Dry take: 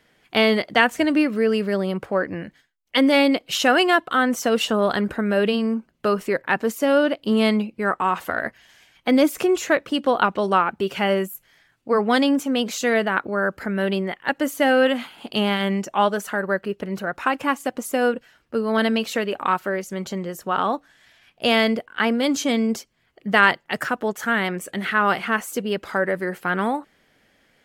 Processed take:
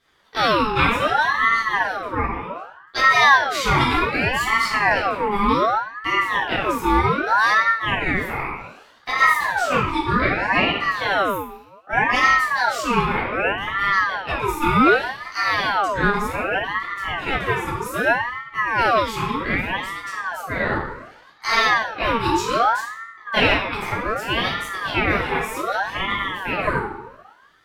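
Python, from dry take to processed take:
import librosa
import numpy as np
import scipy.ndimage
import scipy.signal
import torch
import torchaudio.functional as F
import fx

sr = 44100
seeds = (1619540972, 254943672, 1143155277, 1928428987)

y = fx.room_shoebox(x, sr, seeds[0], volume_m3=290.0, walls='mixed', distance_m=3.6)
y = fx.ring_lfo(y, sr, carrier_hz=1100.0, swing_pct=45, hz=0.65)
y = y * librosa.db_to_amplitude(-8.0)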